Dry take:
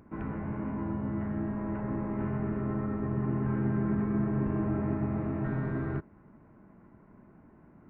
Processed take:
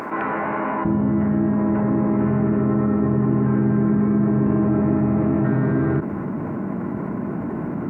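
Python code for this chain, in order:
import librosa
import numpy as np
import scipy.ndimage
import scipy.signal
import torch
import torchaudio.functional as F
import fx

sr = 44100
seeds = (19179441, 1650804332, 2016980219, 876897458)

y = fx.highpass(x, sr, hz=fx.steps((0.0, 750.0), (0.85, 170.0)), slope=12)
y = fx.tilt_eq(y, sr, slope=-2.0)
y = fx.env_flatten(y, sr, amount_pct=70)
y = y * librosa.db_to_amplitude(7.0)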